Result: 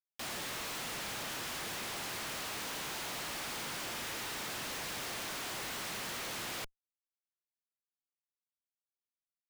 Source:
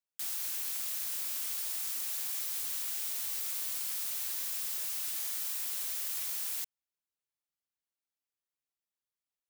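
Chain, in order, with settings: overdrive pedal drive 33 dB, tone 2200 Hz, clips at -22.5 dBFS; frequency shift +100 Hz; Schmitt trigger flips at -41 dBFS

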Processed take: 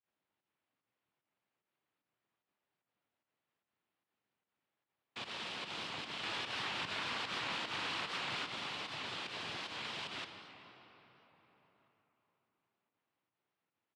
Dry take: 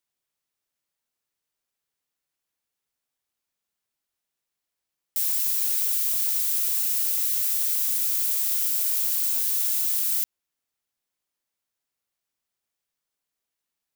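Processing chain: 6.23–8.44 bell 2000 Hz +7 dB 2.9 oct; hard clip -20.5 dBFS, distortion -14 dB; pump 149 bpm, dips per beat 1, -17 dB, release 0.106 s; noise vocoder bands 4; air absorption 430 m; outdoor echo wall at 280 m, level -27 dB; reverb RT60 4.2 s, pre-delay 48 ms, DRR 6.5 dB; record warp 78 rpm, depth 100 cents; gain +6 dB

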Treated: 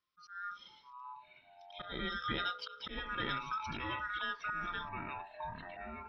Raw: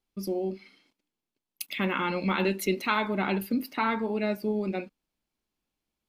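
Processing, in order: band-swap scrambler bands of 1000 Hz; elliptic low-pass 5300 Hz, stop band 40 dB; bell 1100 Hz -8 dB 1.7 oct; auto swell 0.279 s; in parallel at +3 dB: compressor, threshold -42 dBFS, peak gain reduction 14 dB; on the sum: echoes that change speed 0.433 s, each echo -6 st, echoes 3, each echo -6 dB; gain -7 dB

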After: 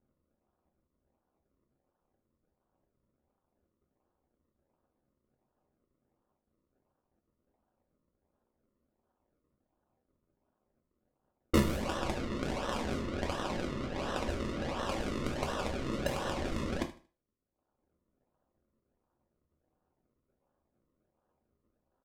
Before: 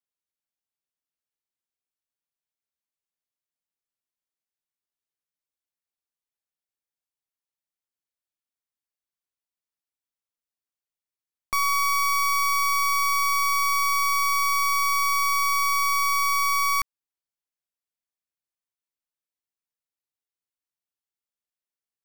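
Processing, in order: cycle switcher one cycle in 2, muted; reverb removal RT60 0.87 s; in parallel at -3 dB: sine folder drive 15 dB, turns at -19 dBFS; on the sum: decimation with a swept rate 38×, swing 100% 1.4 Hz; low-pass opened by the level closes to 1200 Hz, open at -29 dBFS; feedback echo 77 ms, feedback 26%, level -16.5 dB; on a send at -2.5 dB: reverb RT60 0.30 s, pre-delay 3 ms

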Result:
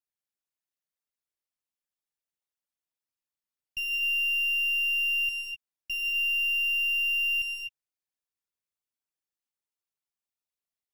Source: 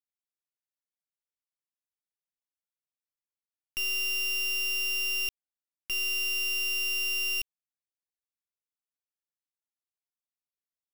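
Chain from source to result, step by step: formant sharpening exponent 2; non-linear reverb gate 0.28 s rising, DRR 3.5 dB; gain -1.5 dB

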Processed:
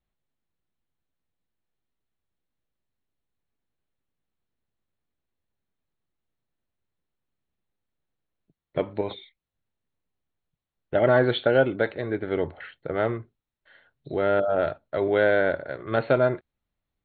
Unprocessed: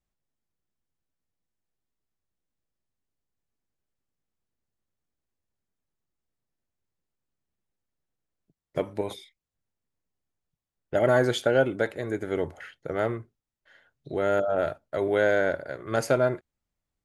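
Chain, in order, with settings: brick-wall FIR low-pass 4400 Hz; gain +2 dB

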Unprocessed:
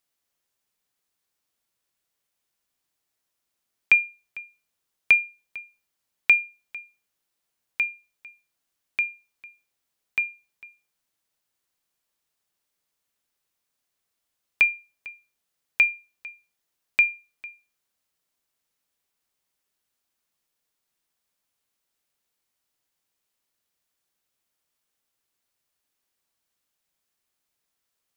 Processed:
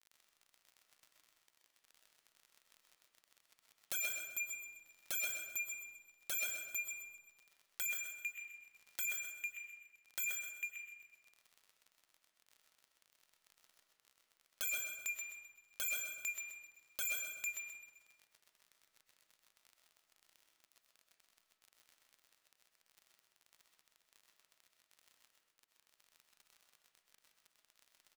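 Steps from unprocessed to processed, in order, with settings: notches 60/120 Hz; expander -54 dBFS; in parallel at +1 dB: compressor 12:1, threshold -28 dBFS, peak gain reduction 16 dB; on the sum: crossover distortion -45 dBFS; crackle 33/s -58 dBFS; wavefolder -35 dBFS; feedback echo 0.129 s, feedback 32%, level -6.5 dB; digital reverb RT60 1 s, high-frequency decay 0.5×, pre-delay 80 ms, DRR 3 dB; mismatched tape noise reduction encoder only; gain +2 dB

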